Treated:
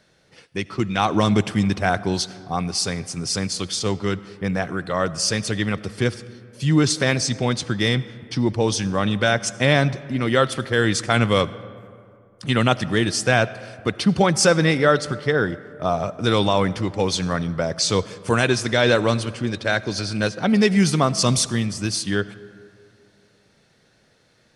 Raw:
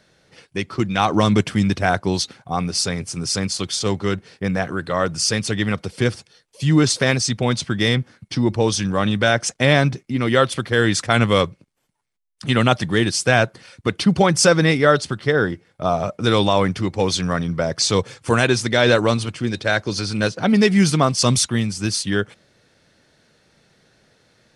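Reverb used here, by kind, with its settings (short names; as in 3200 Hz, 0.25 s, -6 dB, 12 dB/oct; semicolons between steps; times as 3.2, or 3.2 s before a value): digital reverb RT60 2.5 s, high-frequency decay 0.45×, pre-delay 35 ms, DRR 17 dB; gain -2 dB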